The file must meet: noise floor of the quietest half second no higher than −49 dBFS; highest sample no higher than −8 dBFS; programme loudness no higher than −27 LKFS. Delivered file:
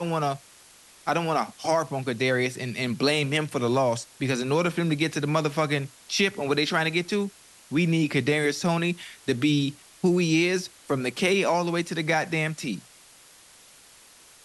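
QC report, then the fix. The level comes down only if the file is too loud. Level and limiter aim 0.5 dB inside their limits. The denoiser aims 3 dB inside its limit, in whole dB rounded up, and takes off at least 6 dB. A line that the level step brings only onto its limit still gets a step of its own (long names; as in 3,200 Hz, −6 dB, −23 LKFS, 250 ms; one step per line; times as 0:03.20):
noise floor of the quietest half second −53 dBFS: in spec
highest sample −9.0 dBFS: in spec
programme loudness −25.5 LKFS: out of spec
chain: level −2 dB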